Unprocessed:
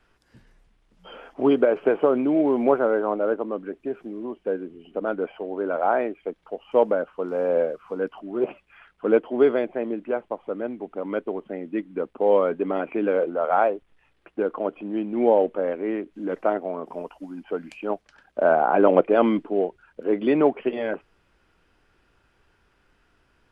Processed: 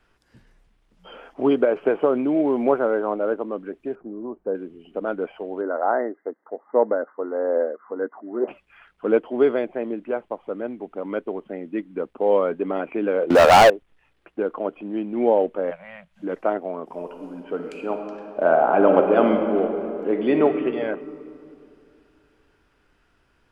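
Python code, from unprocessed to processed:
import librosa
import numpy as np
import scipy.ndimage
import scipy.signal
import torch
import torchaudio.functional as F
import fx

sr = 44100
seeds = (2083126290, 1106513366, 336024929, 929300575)

y = fx.lowpass(x, sr, hz=1300.0, slope=24, at=(3.95, 4.55))
y = fx.brickwall_bandpass(y, sr, low_hz=200.0, high_hz=2100.0, at=(5.61, 8.48))
y = fx.leveller(y, sr, passes=5, at=(13.3, 13.7))
y = fx.ellip_bandstop(y, sr, low_hz=180.0, high_hz=600.0, order=3, stop_db=40, at=(15.7, 16.22), fade=0.02)
y = fx.reverb_throw(y, sr, start_s=16.86, length_s=3.57, rt60_s=2.7, drr_db=4.0)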